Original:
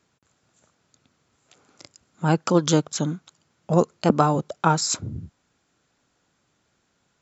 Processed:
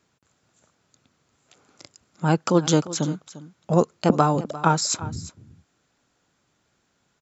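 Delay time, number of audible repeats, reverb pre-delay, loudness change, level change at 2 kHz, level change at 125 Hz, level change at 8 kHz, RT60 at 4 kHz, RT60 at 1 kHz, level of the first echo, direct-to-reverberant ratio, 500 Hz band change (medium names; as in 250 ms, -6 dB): 349 ms, 1, no reverb, 0.0 dB, 0.0 dB, 0.0 dB, no reading, no reverb, no reverb, -16.5 dB, no reverb, 0.0 dB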